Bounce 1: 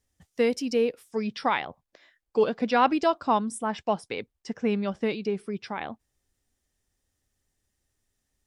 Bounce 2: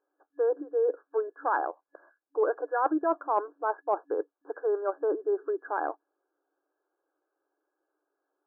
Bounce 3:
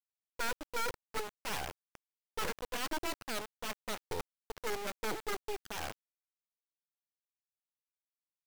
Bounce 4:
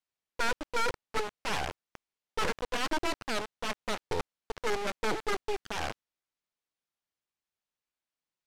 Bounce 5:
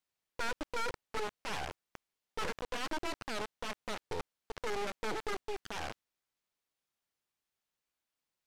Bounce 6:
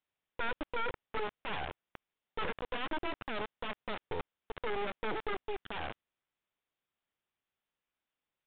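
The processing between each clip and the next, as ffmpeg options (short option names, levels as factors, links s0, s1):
-af "afftfilt=real='re*between(b*sr/4096,280,1700)':imag='im*between(b*sr/4096,280,1700)':win_size=4096:overlap=0.75,areverse,acompressor=threshold=0.0251:ratio=4,areverse,volume=2.24"
-af "aeval=exprs='(mod(11.9*val(0)+1,2)-1)/11.9':c=same,acrusher=bits=3:dc=4:mix=0:aa=0.000001,volume=0.562"
-af "adynamicsmooth=sensitivity=2.5:basefreq=6900,volume=2.11"
-af "alimiter=level_in=2.11:limit=0.0631:level=0:latency=1:release=34,volume=0.473,volume=1.33"
-af "aresample=8000,aresample=44100,volume=1.12"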